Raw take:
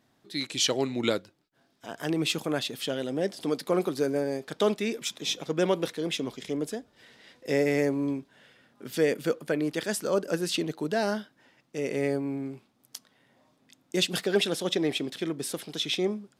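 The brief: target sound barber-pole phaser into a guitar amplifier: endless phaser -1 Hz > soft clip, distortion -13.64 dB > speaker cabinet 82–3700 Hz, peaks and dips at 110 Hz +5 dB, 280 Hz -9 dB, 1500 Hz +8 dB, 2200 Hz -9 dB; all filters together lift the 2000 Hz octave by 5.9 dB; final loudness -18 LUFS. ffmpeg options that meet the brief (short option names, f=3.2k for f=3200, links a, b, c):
-filter_complex "[0:a]equalizer=f=2k:t=o:g=6,asplit=2[a][b];[b]afreqshift=-1[c];[a][c]amix=inputs=2:normalize=1,asoftclip=threshold=-23.5dB,highpass=82,equalizer=f=110:t=q:w=4:g=5,equalizer=f=280:t=q:w=4:g=-9,equalizer=f=1.5k:t=q:w=4:g=8,equalizer=f=2.2k:t=q:w=4:g=-9,lowpass=f=3.7k:w=0.5412,lowpass=f=3.7k:w=1.3066,volume=17dB"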